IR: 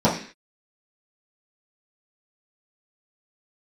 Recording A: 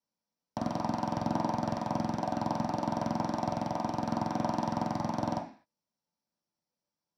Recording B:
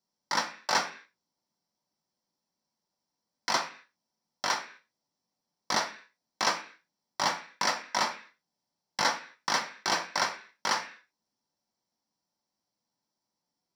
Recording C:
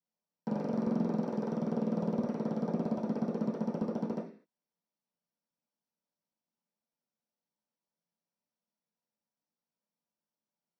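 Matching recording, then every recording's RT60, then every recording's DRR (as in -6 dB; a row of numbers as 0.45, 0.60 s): C; 0.45, 0.45, 0.45 s; -4.0, 4.0, -9.5 dB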